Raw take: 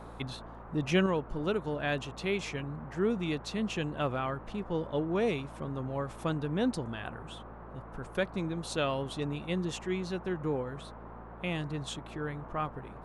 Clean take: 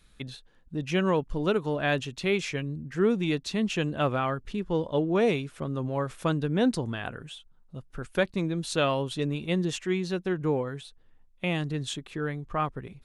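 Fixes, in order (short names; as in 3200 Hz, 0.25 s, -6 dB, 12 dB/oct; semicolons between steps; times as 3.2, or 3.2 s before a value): de-hum 56.5 Hz, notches 4; noise print and reduce 9 dB; gain 0 dB, from 1.06 s +5.5 dB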